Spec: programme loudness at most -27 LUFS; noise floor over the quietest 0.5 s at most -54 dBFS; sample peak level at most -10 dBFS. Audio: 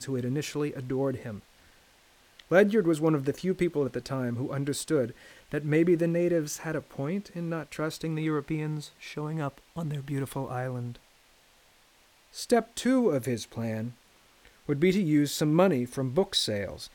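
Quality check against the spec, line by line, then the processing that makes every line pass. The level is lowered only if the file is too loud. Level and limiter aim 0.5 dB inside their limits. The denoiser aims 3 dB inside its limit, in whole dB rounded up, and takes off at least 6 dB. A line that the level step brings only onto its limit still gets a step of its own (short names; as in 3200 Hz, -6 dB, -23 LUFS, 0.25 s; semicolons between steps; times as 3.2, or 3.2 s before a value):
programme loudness -28.5 LUFS: OK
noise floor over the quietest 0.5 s -61 dBFS: OK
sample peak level -8.0 dBFS: fail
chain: limiter -10.5 dBFS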